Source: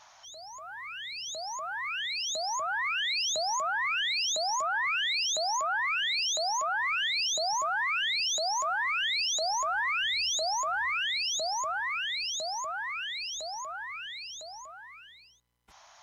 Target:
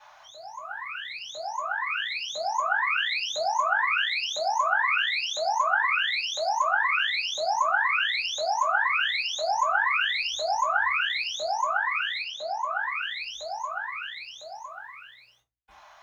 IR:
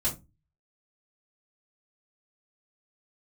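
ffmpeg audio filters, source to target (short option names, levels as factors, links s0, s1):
-filter_complex "[0:a]acrusher=bits=10:mix=0:aa=0.000001,asplit=3[s0][s1][s2];[s0]afade=t=out:st=12.21:d=0.02[s3];[s1]highpass=150,lowpass=4200,afade=t=in:st=12.21:d=0.02,afade=t=out:st=12.7:d=0.02[s4];[s2]afade=t=in:st=12.7:d=0.02[s5];[s3][s4][s5]amix=inputs=3:normalize=0,acrossover=split=440 3300:gain=0.158 1 0.158[s6][s7][s8];[s6][s7][s8]amix=inputs=3:normalize=0[s9];[1:a]atrim=start_sample=2205,asetrate=42777,aresample=44100[s10];[s9][s10]afir=irnorm=-1:irlink=0"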